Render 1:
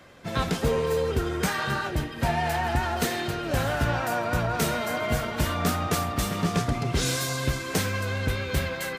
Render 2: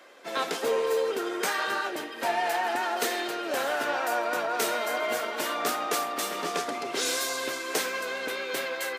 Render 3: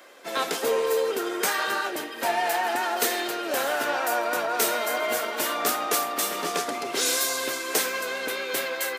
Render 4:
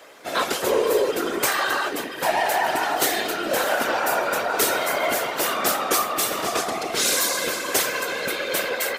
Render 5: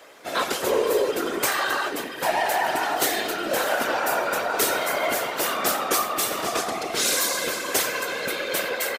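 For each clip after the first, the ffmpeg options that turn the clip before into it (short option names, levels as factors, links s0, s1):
-af "highpass=f=330:w=0.5412,highpass=f=330:w=1.3066"
-af "highshelf=f=9000:g=9.5,volume=1.26"
-af "acontrast=68,afftfilt=real='hypot(re,im)*cos(2*PI*random(0))':imag='hypot(re,im)*sin(2*PI*random(1))':win_size=512:overlap=0.75,volume=1.41"
-filter_complex "[0:a]asplit=2[s0][s1];[s1]adelay=93.29,volume=0.141,highshelf=f=4000:g=-2.1[s2];[s0][s2]amix=inputs=2:normalize=0,volume=0.841"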